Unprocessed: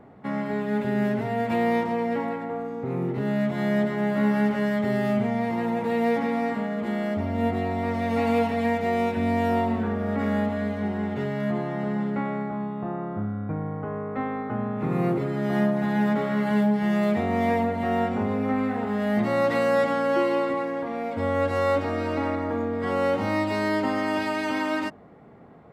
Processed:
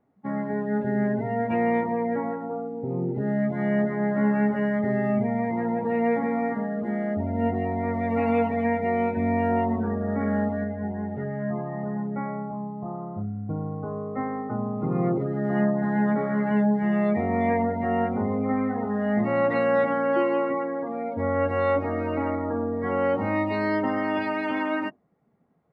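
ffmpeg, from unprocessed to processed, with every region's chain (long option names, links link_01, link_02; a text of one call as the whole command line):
ffmpeg -i in.wav -filter_complex "[0:a]asettb=1/sr,asplit=3[link_01][link_02][link_03];[link_01]atrim=end=10.644[link_04];[link_02]atrim=start=10.64:end=13.49,asetpts=PTS-STARTPTS,afade=type=in:duration=0.004:curve=qsin,afade=type=out:start_time=2.846:duration=0.004:curve=qsin,lowpass=2600,equalizer=frequency=310:width=1.3:gain=-5.5[link_05];[link_03]atrim=start=13.486[link_06];[link_04][link_05]acrossfade=duration=0.004:curve1=hsin:curve2=qsin[link_07];[link_07][link_06]acrossfade=duration=0.004:curve1=qsin:curve2=hsin,afftdn=noise_reduction=21:noise_floor=-32,bandreject=frequency=7100:width=14" out.wav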